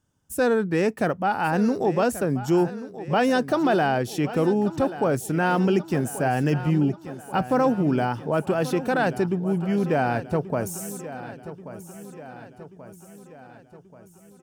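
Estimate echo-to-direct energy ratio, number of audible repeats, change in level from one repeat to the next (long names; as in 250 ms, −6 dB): −12.5 dB, 5, −5.0 dB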